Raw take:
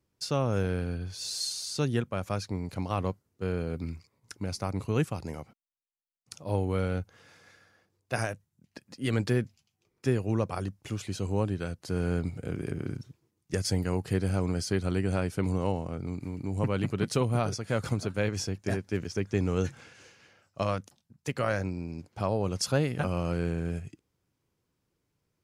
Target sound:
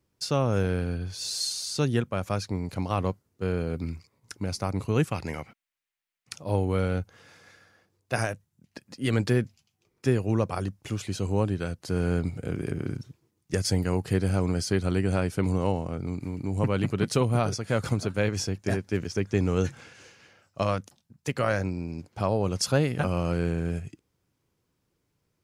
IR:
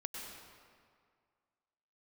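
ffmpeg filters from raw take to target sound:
-filter_complex "[0:a]asettb=1/sr,asplit=3[a][b][c];[a]atrim=end=5.114[d];[b]atrim=start=5.11:end=6.36,asetpts=PTS-STARTPTS,afade=t=in:d=0.004:c=qsin,afade=t=out:st=1.246:d=0.004:c=qsin,equalizer=f=2.1k:t=o:w=1.4:g=10.5[e];[c]atrim=start=6.356[f];[d][e]acrossfade=d=0.004:c1=hsin:c2=qsin[g];[g][f]acrossfade=d=0.004:c1=qsin:c2=hsin,volume=3dB"

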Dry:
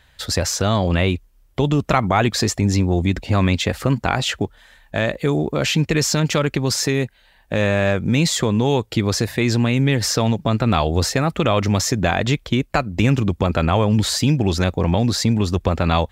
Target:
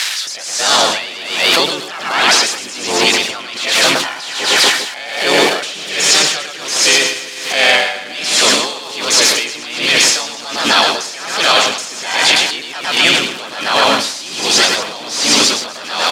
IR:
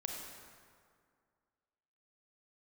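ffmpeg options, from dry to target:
-filter_complex "[0:a]aeval=exprs='val(0)+0.5*0.0473*sgn(val(0))':c=same,agate=range=-11dB:threshold=-23dB:ratio=16:detection=peak,aderivative,dynaudnorm=f=170:g=7:m=10.5dB,asplit=3[a][b][c];[b]asetrate=35002,aresample=44100,atempo=1.25992,volume=-15dB[d];[c]asetrate=55563,aresample=44100,atempo=0.793701,volume=0dB[e];[a][d][e]amix=inputs=3:normalize=0,asoftclip=type=tanh:threshold=-18.5dB,highpass=260,lowpass=5.2k,aecho=1:1:110|242|400.4|590.5|818.6:0.631|0.398|0.251|0.158|0.1,acompressor=threshold=-39dB:ratio=2.5,alimiter=level_in=35dB:limit=-1dB:release=50:level=0:latency=1,aeval=exprs='val(0)*pow(10,-18*(0.5-0.5*cos(2*PI*1.3*n/s))/20)':c=same"

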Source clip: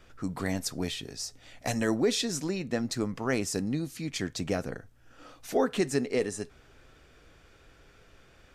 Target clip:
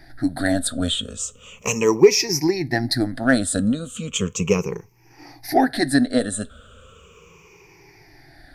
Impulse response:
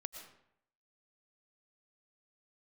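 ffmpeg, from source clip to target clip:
-af "afftfilt=real='re*pow(10,23/40*sin(2*PI*(0.77*log(max(b,1)*sr/1024/100)/log(2)-(-0.36)*(pts-256)/sr)))':imag='im*pow(10,23/40*sin(2*PI*(0.77*log(max(b,1)*sr/1024/100)/log(2)-(-0.36)*(pts-256)/sr)))':win_size=1024:overlap=0.75,aeval=exprs='0.473*(cos(1*acos(clip(val(0)/0.473,-1,1)))-cos(1*PI/2))+0.0075*(cos(7*acos(clip(val(0)/0.473,-1,1)))-cos(7*PI/2))':c=same,volume=5.5dB"

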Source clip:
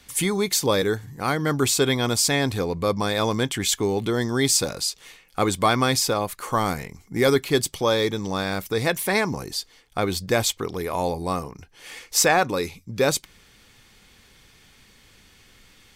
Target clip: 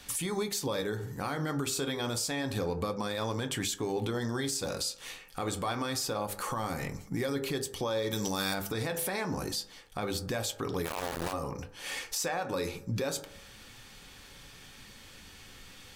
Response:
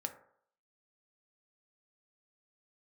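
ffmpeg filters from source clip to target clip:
-filter_complex "[0:a]bandreject=f=50:t=h:w=6,bandreject=f=100:t=h:w=6,bandreject=f=150:t=h:w=6,bandreject=f=200:t=h:w=6,bandreject=f=250:t=h:w=6,bandreject=f=300:t=h:w=6,bandreject=f=350:t=h:w=6,bandreject=f=400:t=h:w=6,bandreject=f=450:t=h:w=6,bandreject=f=500:t=h:w=6,acompressor=threshold=-30dB:ratio=3,asplit=2[a][b];[1:a]atrim=start_sample=2205[c];[b][c]afir=irnorm=-1:irlink=0,volume=4dB[d];[a][d]amix=inputs=2:normalize=0,flanger=delay=6.9:depth=5.1:regen=-66:speed=0.28:shape=sinusoidal,alimiter=limit=-23dB:level=0:latency=1:release=133,asplit=3[e][f][g];[e]afade=t=out:st=8.1:d=0.02[h];[f]aemphasis=mode=production:type=75fm,afade=t=in:st=8.1:d=0.02,afade=t=out:st=8.53:d=0.02[i];[g]afade=t=in:st=8.53:d=0.02[j];[h][i][j]amix=inputs=3:normalize=0,asplit=3[k][l][m];[k]afade=t=out:st=10.84:d=0.02[n];[l]aeval=exprs='val(0)*gte(abs(val(0)),0.0376)':c=same,afade=t=in:st=10.84:d=0.02,afade=t=out:st=11.32:d=0.02[o];[m]afade=t=in:st=11.32:d=0.02[p];[n][o][p]amix=inputs=3:normalize=0,bandreject=f=2.1k:w=16"

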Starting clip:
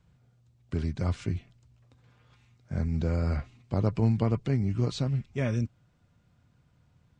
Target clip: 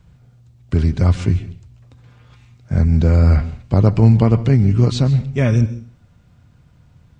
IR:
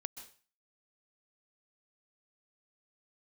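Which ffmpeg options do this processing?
-filter_complex "[0:a]asplit=2[a][b];[1:a]atrim=start_sample=2205,lowshelf=f=150:g=12[c];[b][c]afir=irnorm=-1:irlink=0,volume=-0.5dB[d];[a][d]amix=inputs=2:normalize=0,volume=6.5dB"

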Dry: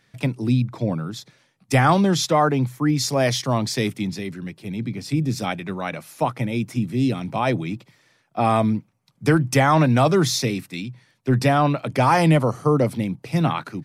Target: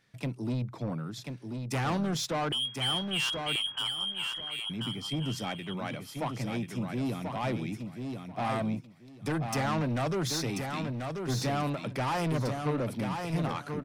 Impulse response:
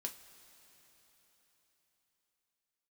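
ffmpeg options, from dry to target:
-filter_complex "[0:a]asettb=1/sr,asplit=3[a][b][c];[a]atrim=end=2.524[d];[b]atrim=start=2.52:end=4.7,asetpts=PTS-STARTPTS,afade=t=in:d=0.004:c=qsin,afade=t=out:st=2.176:d=0.004:c=qsin,lowpass=f=2.9k:t=q:w=0.5098,lowpass=f=2.9k:t=q:w=0.6013,lowpass=f=2.9k:t=q:w=0.9,lowpass=f=2.9k:t=q:w=2.563,afreqshift=-3400[e];[c]atrim=start=4.696[f];[d][e]acrossfade=d=0.004:c1=hsin:c2=qsin[g];[g][f]acrossfade=d=0.004:c1=qsin:c2=hsin,asoftclip=type=tanh:threshold=-19.5dB,aecho=1:1:1037|2074|3111:0.531|0.101|0.0192,volume=-7.5dB"

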